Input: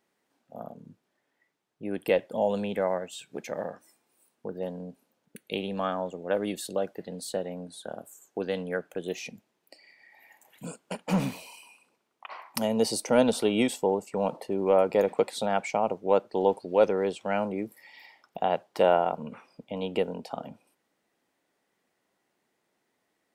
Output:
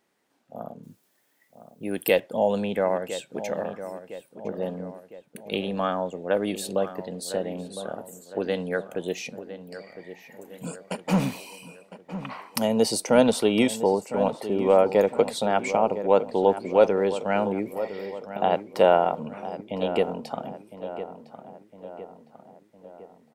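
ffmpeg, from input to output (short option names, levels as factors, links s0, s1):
-filter_complex "[0:a]asettb=1/sr,asplit=3[s0][s1][s2];[s0]atrim=end=0.834[s3];[s1]atrim=start=0.83:end=2.2,asetpts=PTS-STARTPTS,afade=t=in:d=0.004:c=qsin,afade=t=out:st=1.366:d=0.004:c=qsin,aemphasis=mode=production:type=75fm[s4];[s2]atrim=start=2.196[s5];[s3][s4]acrossfade=d=0.004:c1=hsin:c2=qsin[s6];[s6][s5]acrossfade=d=0.004:c1=qsin:c2=hsin,asplit=2[s7][s8];[s8]adelay=1008,lowpass=f=2100:p=1,volume=0.251,asplit=2[s9][s10];[s10]adelay=1008,lowpass=f=2100:p=1,volume=0.53,asplit=2[s11][s12];[s12]adelay=1008,lowpass=f=2100:p=1,volume=0.53,asplit=2[s13][s14];[s14]adelay=1008,lowpass=f=2100:p=1,volume=0.53,asplit=2[s15][s16];[s16]adelay=1008,lowpass=f=2100:p=1,volume=0.53,asplit=2[s17][s18];[s18]adelay=1008,lowpass=f=2100:p=1,volume=0.53[s19];[s7][s9][s11][s13][s15][s17][s19]amix=inputs=7:normalize=0,volume=1.5"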